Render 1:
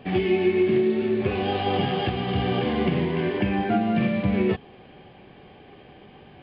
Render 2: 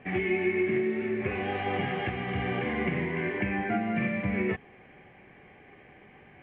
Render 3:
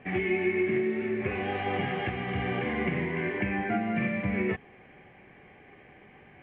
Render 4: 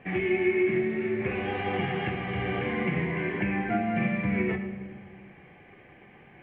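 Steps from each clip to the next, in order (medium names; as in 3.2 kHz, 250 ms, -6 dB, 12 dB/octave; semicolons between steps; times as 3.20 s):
four-pole ladder low-pass 2.3 kHz, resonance 65%; trim +4 dB
no audible change
simulated room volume 1400 m³, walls mixed, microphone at 0.79 m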